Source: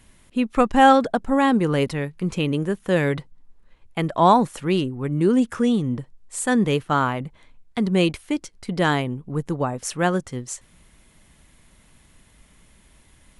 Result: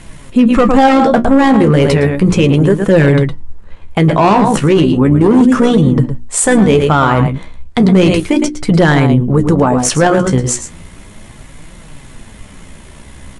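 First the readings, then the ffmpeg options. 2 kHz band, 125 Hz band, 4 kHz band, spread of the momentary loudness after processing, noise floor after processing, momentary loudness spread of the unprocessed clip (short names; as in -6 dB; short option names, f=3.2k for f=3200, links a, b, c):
+9.0 dB, +14.5 dB, +8.5 dB, 6 LU, -36 dBFS, 14 LU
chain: -filter_complex "[0:a]highshelf=f=5.3k:g=6.5,asplit=2[a][b];[b]aecho=0:1:111:0.282[c];[a][c]amix=inputs=2:normalize=0,asoftclip=type=hard:threshold=-15.5dB,bandreject=f=60:t=h:w=6,bandreject=f=120:t=h:w=6,bandreject=f=180:t=h:w=6,bandreject=f=240:t=h:w=6,bandreject=f=300:t=h:w=6,bandreject=f=360:t=h:w=6,acontrast=88,lowpass=f=9.8k:w=0.5412,lowpass=f=9.8k:w=1.3066,tremolo=f=61:d=0.4,flanger=delay=5.6:depth=9.7:regen=42:speed=0.34:shape=triangular,highshelf=f=2k:g=-9.5,alimiter=level_in=20.5dB:limit=-1dB:release=50:level=0:latency=1,volume=-1dB"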